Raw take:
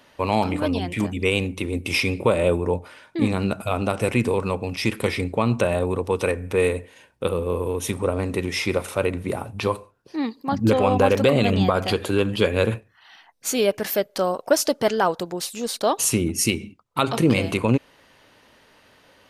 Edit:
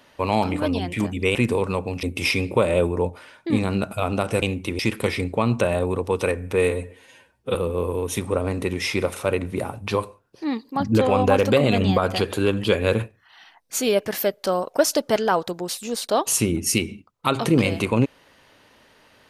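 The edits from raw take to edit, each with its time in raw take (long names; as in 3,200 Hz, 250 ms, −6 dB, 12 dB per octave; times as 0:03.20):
0:01.35–0:01.72: swap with 0:04.11–0:04.79
0:06.71–0:07.27: time-stretch 1.5×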